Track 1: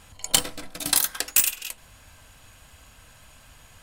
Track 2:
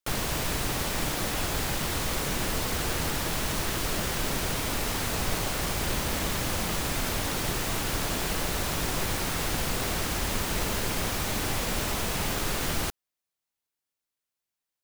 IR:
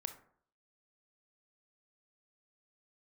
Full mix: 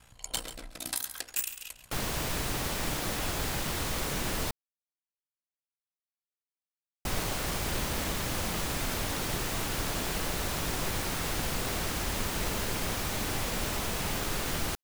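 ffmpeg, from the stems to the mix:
-filter_complex "[0:a]aeval=exprs='val(0)*sin(2*PI*30*n/s)':c=same,volume=-4.5dB,asplit=2[a][b];[b]volume=-13.5dB[c];[1:a]adelay=1850,volume=-3dB,asplit=3[d][e][f];[d]atrim=end=4.51,asetpts=PTS-STARTPTS,afade=t=out:st=4.506:d=0.004:c=hsin[g];[e]atrim=start=4.51:end=7.05,asetpts=PTS-STARTPTS,volume=0[h];[f]atrim=start=7.05,asetpts=PTS-STARTPTS,afade=t=in:d=0.004:c=hsin[i];[g][h][i]concat=n=3:v=0:a=1[j];[c]aecho=0:1:137:1[k];[a][j][k]amix=inputs=3:normalize=0,alimiter=limit=-18dB:level=0:latency=1:release=256"

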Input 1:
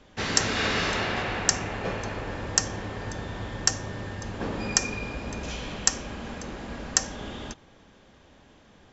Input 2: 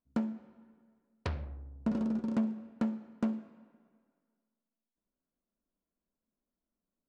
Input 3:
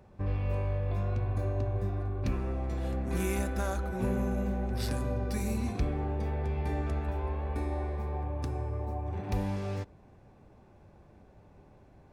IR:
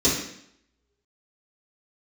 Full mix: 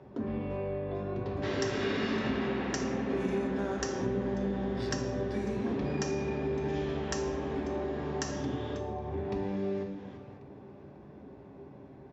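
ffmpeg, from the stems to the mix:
-filter_complex "[0:a]adelay=1250,volume=-2dB,asplit=2[a][b];[b]volume=-16dB[c];[1:a]acompressor=threshold=-42dB:ratio=2,volume=-6.5dB,asplit=2[d][e];[e]volume=-5.5dB[f];[2:a]volume=3dB,asplit=3[g][h][i];[h]volume=-17dB[j];[i]volume=-19dB[k];[3:a]atrim=start_sample=2205[l];[c][f][j]amix=inputs=3:normalize=0[m];[m][l]afir=irnorm=-1:irlink=0[n];[k]aecho=0:1:545|1090|1635|2180|2725:1|0.36|0.13|0.0467|0.0168[o];[a][d][g][n][o]amix=inputs=5:normalize=0,highpass=130,lowpass=3.4k,acompressor=threshold=-36dB:ratio=2"

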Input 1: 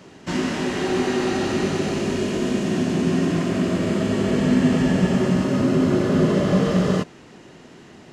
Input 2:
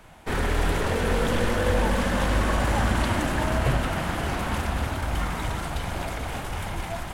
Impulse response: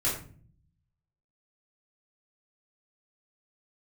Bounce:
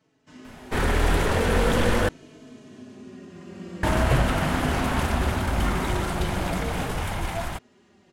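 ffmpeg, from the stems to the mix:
-filter_complex "[0:a]asplit=2[a][b];[b]adelay=4.1,afreqshift=-0.44[c];[a][c]amix=inputs=2:normalize=1,volume=-11dB,afade=t=in:st=3.29:d=0.77:silence=0.375837[d];[1:a]adelay=450,volume=2.5dB,asplit=3[e][f][g];[e]atrim=end=2.09,asetpts=PTS-STARTPTS,afade=t=out:st=2.086:d=0.004:c=hsin[h];[f]atrim=start=2.09:end=3.83,asetpts=PTS-STARTPTS,volume=0[i];[g]atrim=start=3.83,asetpts=PTS-STARTPTS,afade=t=in:d=0.004:c=hsin[j];[h][i][j]concat=n=3:v=0:a=1[k];[d][k]amix=inputs=2:normalize=0"

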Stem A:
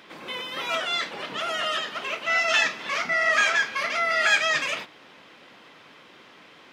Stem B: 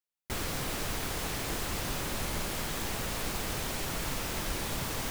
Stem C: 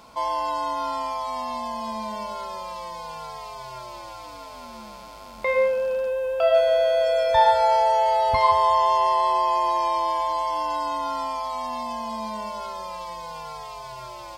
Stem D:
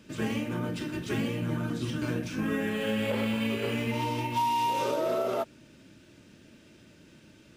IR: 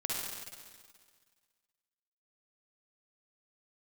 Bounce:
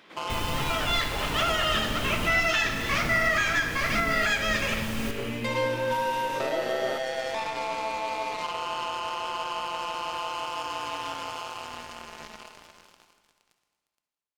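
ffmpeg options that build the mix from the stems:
-filter_complex "[0:a]dynaudnorm=f=690:g=3:m=11.5dB,volume=-7.5dB,asplit=2[a][b];[b]volume=-9dB[c];[1:a]lowshelf=f=330:g=9,volume=-6dB,asplit=2[d][e];[e]volume=-8dB[f];[2:a]highpass=f=230:w=0.5412,highpass=f=230:w=1.3066,alimiter=limit=-19.5dB:level=0:latency=1:release=198,acrusher=bits=3:mix=0:aa=0.5,volume=-7dB,asplit=2[g][h];[h]volume=-8.5dB[i];[3:a]adelay=1550,volume=-2.5dB[j];[4:a]atrim=start_sample=2205[k];[c][f][i]amix=inputs=3:normalize=0[l];[l][k]afir=irnorm=-1:irlink=0[m];[a][d][g][j][m]amix=inputs=5:normalize=0,alimiter=limit=-14.5dB:level=0:latency=1:release=486"

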